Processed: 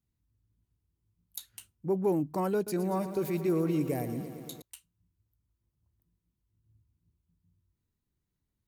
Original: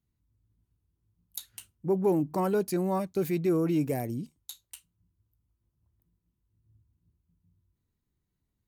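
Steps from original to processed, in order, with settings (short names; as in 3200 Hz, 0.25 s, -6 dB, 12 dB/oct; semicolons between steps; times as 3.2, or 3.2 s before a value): 2.55–4.62 lo-fi delay 0.115 s, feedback 80%, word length 9-bit, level -12 dB; gain -2.5 dB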